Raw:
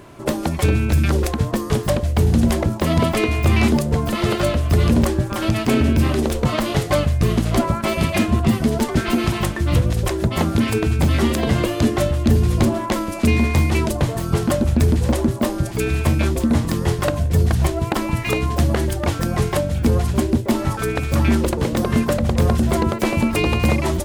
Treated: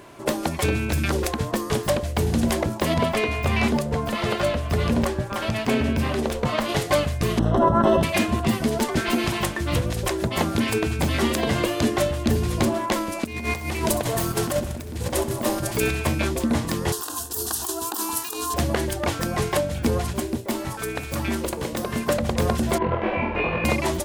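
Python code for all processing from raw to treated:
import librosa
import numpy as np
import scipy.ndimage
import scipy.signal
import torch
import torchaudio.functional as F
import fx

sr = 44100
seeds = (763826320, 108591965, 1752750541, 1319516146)

y = fx.chain(x, sr, fx.high_shelf(hz=4200.0, db=-7.0),
    fx.notch(hz=330.0, q=5.3), at=(2.94, 6.69))
y = fx.chain(y, sr, fx.moving_average(points=19),
    fx.env_flatten(amount_pct=100), at=(7.39, 8.03))
y = fx.chain(y, sr, fx.high_shelf(hz=11000.0, db=8.0),
    fx.over_compress(threshold_db=-20.0, ratio=-0.5),
    fx.echo_feedback(ms=64, feedback_pct=57, wet_db=-12.5), at=(13.24, 15.91))
y = fx.chain(y, sr, fx.riaa(side='recording'),
    fx.over_compress(threshold_db=-24.0, ratio=-1.0),
    fx.fixed_phaser(hz=580.0, stages=6), at=(16.92, 18.54))
y = fx.chain(y, sr, fx.high_shelf(hz=8900.0, db=6.0),
    fx.comb_fb(f0_hz=65.0, decay_s=0.47, harmonics='all', damping=0.0, mix_pct=50), at=(20.13, 22.07))
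y = fx.chain(y, sr, fx.lowpass(hz=2600.0, slope=24),
    fx.room_flutter(wall_m=4.1, rt60_s=0.58),
    fx.detune_double(cents=45), at=(22.78, 23.65))
y = fx.low_shelf(y, sr, hz=240.0, db=-9.5)
y = fx.notch(y, sr, hz=1300.0, q=22.0)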